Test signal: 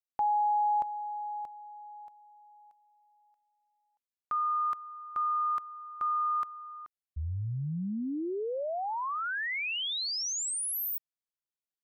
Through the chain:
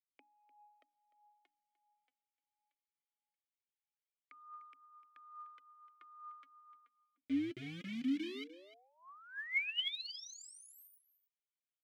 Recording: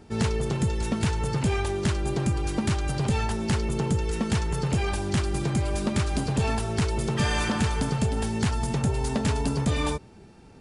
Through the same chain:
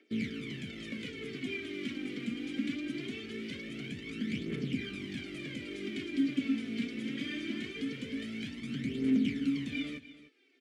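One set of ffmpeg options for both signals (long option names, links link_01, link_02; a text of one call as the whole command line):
ffmpeg -i in.wav -filter_complex "[0:a]bandreject=frequency=60:width_type=h:width=6,bandreject=frequency=120:width_type=h:width=6,bandreject=frequency=180:width_type=h:width=6,bandreject=frequency=240:width_type=h:width=6,bandreject=frequency=300:width_type=h:width=6,acrossover=split=100|430[link_01][link_02][link_03];[link_01]acompressor=threshold=-50dB:ratio=4[link_04];[link_02]acompressor=threshold=-26dB:ratio=4[link_05];[link_03]acompressor=threshold=-32dB:ratio=4[link_06];[link_04][link_05][link_06]amix=inputs=3:normalize=0,acrossover=split=450|1700[link_07][link_08][link_09];[link_07]acrusher=bits=5:mix=0:aa=0.000001[link_10];[link_10][link_08][link_09]amix=inputs=3:normalize=0,aeval=exprs='0.0668*(abs(mod(val(0)/0.0668+3,4)-2)-1)':channel_layout=same,asplit=3[link_11][link_12][link_13];[link_11]bandpass=frequency=270:width_type=q:width=8,volume=0dB[link_14];[link_12]bandpass=frequency=2290:width_type=q:width=8,volume=-6dB[link_15];[link_13]bandpass=frequency=3010:width_type=q:width=8,volume=-9dB[link_16];[link_14][link_15][link_16]amix=inputs=3:normalize=0,aphaser=in_gain=1:out_gain=1:delay=4.3:decay=0.6:speed=0.22:type=triangular,aecho=1:1:300:0.168,volume=5dB" out.wav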